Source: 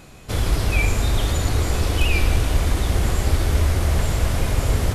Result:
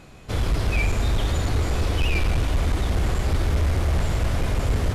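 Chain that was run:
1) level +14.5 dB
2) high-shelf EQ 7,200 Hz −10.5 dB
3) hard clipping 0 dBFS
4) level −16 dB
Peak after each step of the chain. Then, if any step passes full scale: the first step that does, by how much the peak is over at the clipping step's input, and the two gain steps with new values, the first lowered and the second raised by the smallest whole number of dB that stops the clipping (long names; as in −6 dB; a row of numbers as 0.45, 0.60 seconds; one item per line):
+9.0, +9.0, 0.0, −16.0 dBFS
step 1, 9.0 dB
step 1 +5.5 dB, step 4 −7 dB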